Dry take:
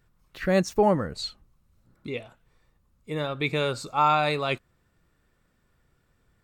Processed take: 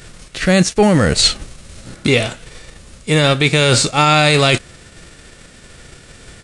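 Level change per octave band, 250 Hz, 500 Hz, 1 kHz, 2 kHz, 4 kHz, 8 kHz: +13.5, +10.0, +7.0, +15.0, +19.0, +23.5 dB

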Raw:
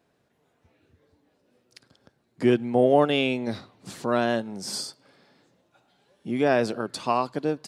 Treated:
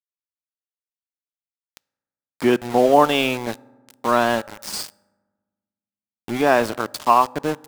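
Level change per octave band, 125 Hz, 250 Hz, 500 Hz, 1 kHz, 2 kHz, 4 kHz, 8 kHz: -0.5, +2.0, +3.5, +9.5, +6.5, +4.5, +5.0 dB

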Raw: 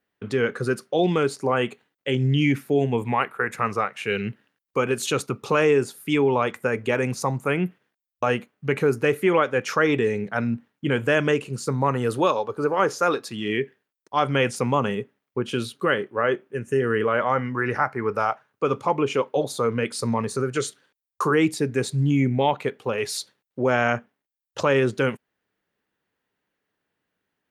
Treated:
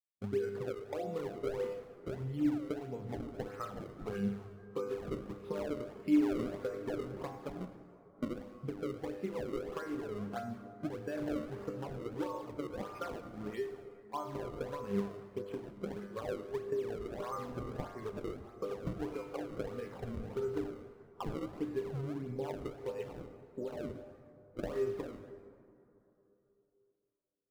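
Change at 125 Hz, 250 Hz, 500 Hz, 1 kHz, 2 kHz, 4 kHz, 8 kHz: -17.0, -12.0, -15.5, -20.0, -25.0, -22.5, -24.0 dB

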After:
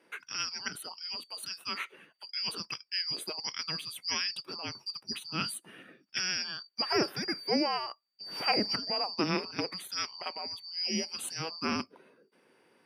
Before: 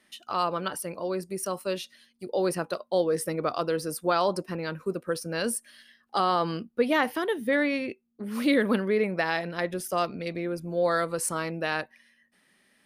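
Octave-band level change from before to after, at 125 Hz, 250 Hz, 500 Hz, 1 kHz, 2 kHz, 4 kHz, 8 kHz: -8.5, -8.0, -12.5, -8.0, -6.0, +6.5, -4.0 dB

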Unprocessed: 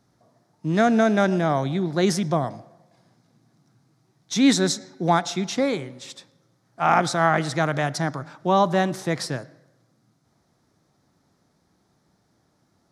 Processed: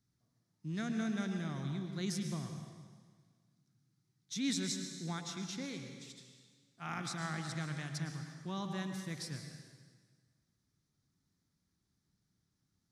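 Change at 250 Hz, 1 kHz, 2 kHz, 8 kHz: -15.5, -24.0, -17.5, -12.0 dB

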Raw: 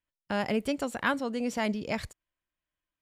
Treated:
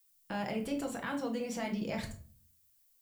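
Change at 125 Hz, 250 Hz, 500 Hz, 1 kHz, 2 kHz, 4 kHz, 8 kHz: -2.5, -4.5, -6.0, -7.0, -9.0, -7.0, -2.0 dB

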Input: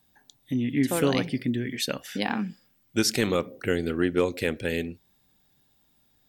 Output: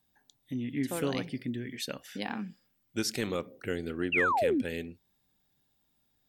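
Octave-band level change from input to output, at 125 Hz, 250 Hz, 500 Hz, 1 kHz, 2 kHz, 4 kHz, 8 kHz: -8.0, -7.0, -6.0, +1.0, -1.5, -7.5, -8.0 dB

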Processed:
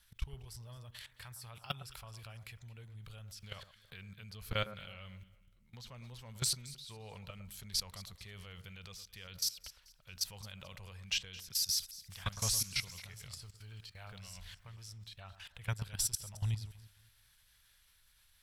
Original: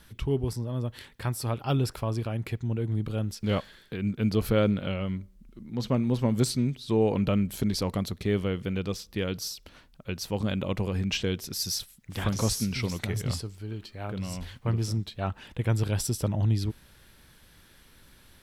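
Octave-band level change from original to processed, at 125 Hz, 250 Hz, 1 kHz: -16.0, -26.5, -13.0 dB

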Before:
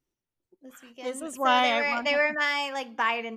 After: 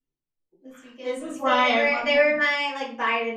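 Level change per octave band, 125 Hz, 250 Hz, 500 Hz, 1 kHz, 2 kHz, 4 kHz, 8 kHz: n/a, +4.0 dB, +6.0 dB, +1.0 dB, +3.5 dB, +1.5 dB, -4.0 dB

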